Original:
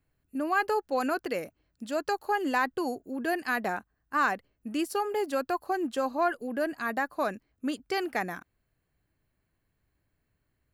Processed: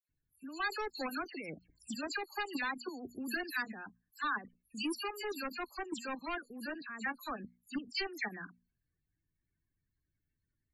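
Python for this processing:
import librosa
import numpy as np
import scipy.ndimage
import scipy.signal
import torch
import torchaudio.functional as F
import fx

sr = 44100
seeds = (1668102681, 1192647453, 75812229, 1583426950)

y = fx.level_steps(x, sr, step_db=14)
y = fx.hum_notches(y, sr, base_hz=60, count=4)
y = fx.dispersion(y, sr, late='lows', ms=90.0, hz=2700.0)
y = np.clip(10.0 ** (28.5 / 20.0) * y, -1.0, 1.0) / 10.0 ** (28.5 / 20.0)
y = fx.peak_eq(y, sr, hz=7200.0, db=6.0, octaves=2.3)
y = fx.notch(y, sr, hz=3300.0, q=9.8)
y = fx.spec_topn(y, sr, count=32)
y = fx.peak_eq(y, sr, hz=610.0, db=-14.0, octaves=1.2)
y = fx.band_squash(y, sr, depth_pct=70, at=(0.93, 3.67))
y = y * librosa.db_to_amplitude(1.0)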